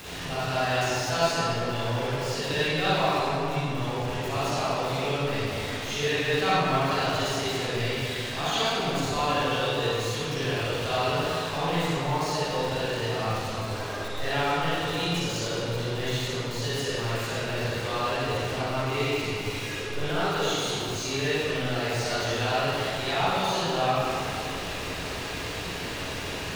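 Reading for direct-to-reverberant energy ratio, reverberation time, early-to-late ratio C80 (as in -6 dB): -11.0 dB, 2.7 s, -4.0 dB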